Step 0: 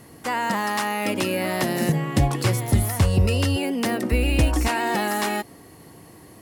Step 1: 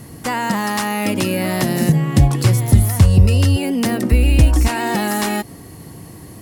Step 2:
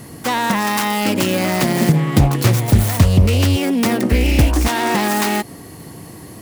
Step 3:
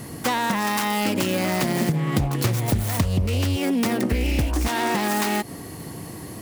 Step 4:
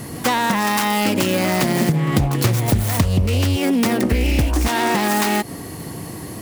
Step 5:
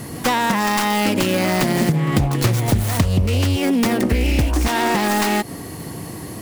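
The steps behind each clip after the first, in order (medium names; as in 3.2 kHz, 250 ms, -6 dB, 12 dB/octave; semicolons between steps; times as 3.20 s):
tone controls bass +9 dB, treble +4 dB; in parallel at +0.5 dB: compression, threshold -24 dBFS, peak gain reduction 17.5 dB; on the sum: trim -1.5 dB
self-modulated delay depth 0.4 ms; bass shelf 120 Hz -8.5 dB; trim +3.5 dB
compression, threshold -19 dBFS, peak gain reduction 12 dB
pre-echo 95 ms -24 dB; trim +4.5 dB
tracing distortion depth 0.051 ms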